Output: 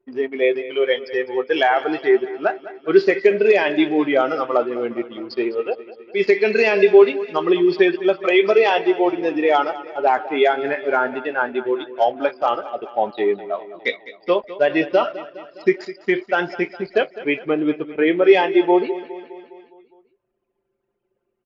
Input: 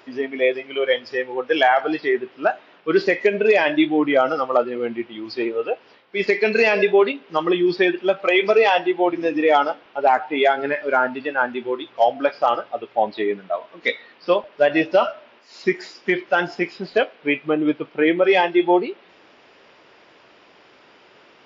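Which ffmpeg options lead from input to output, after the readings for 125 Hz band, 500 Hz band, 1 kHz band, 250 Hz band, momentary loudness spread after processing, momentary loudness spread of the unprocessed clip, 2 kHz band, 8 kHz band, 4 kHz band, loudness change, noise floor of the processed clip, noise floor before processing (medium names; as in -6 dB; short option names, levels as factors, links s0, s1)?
-1.0 dB, +2.0 dB, -1.0 dB, +1.5 dB, 11 LU, 10 LU, -1.0 dB, no reading, -1.0 dB, +1.0 dB, -73 dBFS, -52 dBFS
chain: -filter_complex "[0:a]anlmdn=1.58,equalizer=f=390:w=6.2:g=7,asplit=2[s0][s1];[s1]aecho=0:1:205|410|615|820|1025|1230:0.158|0.0935|0.0552|0.0326|0.0192|0.0113[s2];[s0][s2]amix=inputs=2:normalize=0,volume=0.891"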